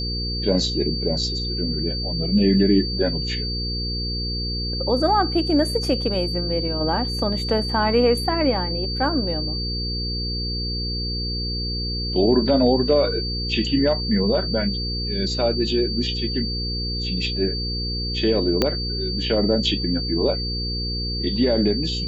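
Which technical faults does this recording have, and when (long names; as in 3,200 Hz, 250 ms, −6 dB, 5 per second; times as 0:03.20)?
mains hum 60 Hz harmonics 8 −28 dBFS
whistle 4,600 Hz −27 dBFS
0:18.62: click −5 dBFS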